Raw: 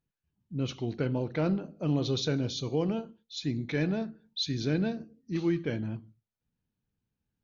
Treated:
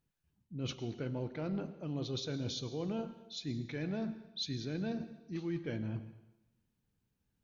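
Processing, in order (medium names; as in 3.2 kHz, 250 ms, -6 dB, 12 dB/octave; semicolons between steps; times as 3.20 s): reverse; compression 6:1, threshold -38 dBFS, peak gain reduction 14.5 dB; reverse; plate-style reverb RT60 0.93 s, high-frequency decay 1×, pre-delay 90 ms, DRR 13 dB; trim +2.5 dB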